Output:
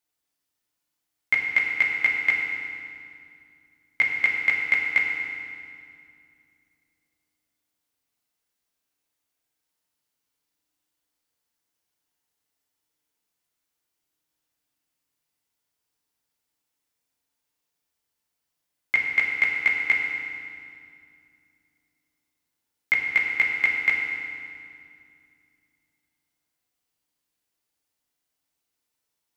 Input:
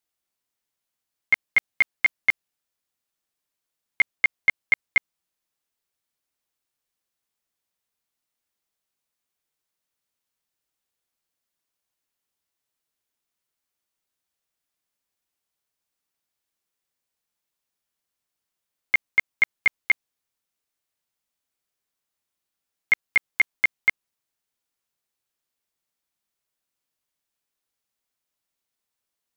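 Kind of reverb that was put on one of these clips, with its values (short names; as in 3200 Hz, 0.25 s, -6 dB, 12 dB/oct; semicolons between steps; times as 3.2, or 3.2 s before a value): FDN reverb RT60 2.3 s, low-frequency decay 1.5×, high-frequency decay 0.9×, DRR -1 dB; gain -1 dB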